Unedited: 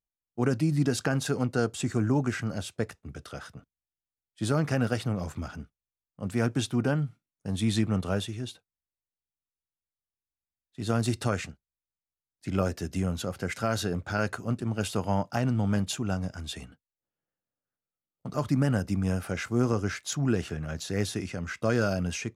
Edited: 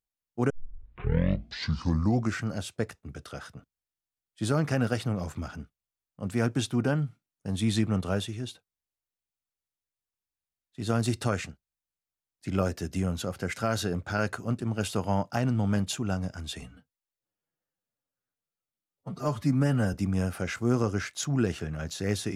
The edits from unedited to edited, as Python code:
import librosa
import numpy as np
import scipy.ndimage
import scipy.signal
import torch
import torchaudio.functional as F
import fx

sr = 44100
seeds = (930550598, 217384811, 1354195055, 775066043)

y = fx.edit(x, sr, fx.tape_start(start_s=0.5, length_s=1.95),
    fx.stretch_span(start_s=16.62, length_s=2.21, factor=1.5), tone=tone)